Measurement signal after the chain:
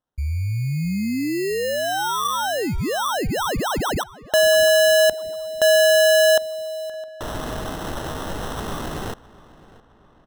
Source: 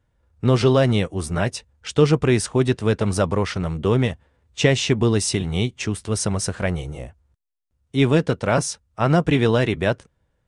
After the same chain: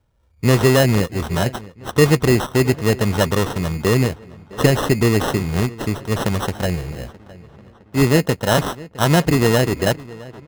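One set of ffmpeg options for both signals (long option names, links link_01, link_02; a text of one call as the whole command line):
ffmpeg -i in.wav -filter_complex "[0:a]acrusher=samples=19:mix=1:aa=0.000001,asplit=2[link_01][link_02];[link_02]adelay=662,lowpass=frequency=3600:poles=1,volume=-20dB,asplit=2[link_03][link_04];[link_04]adelay=662,lowpass=frequency=3600:poles=1,volume=0.51,asplit=2[link_05][link_06];[link_06]adelay=662,lowpass=frequency=3600:poles=1,volume=0.51,asplit=2[link_07][link_08];[link_08]adelay=662,lowpass=frequency=3600:poles=1,volume=0.51[link_09];[link_01][link_03][link_05][link_07][link_09]amix=inputs=5:normalize=0,volume=2.5dB" out.wav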